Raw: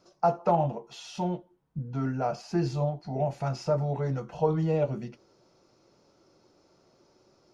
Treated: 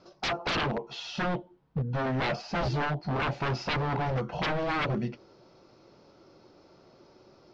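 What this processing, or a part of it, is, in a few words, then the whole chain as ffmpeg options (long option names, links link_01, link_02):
synthesiser wavefolder: -af "aeval=exprs='0.0316*(abs(mod(val(0)/0.0316+3,4)-2)-1)':channel_layout=same,lowpass=frequency=4900:width=0.5412,lowpass=frequency=4900:width=1.3066,volume=6.5dB"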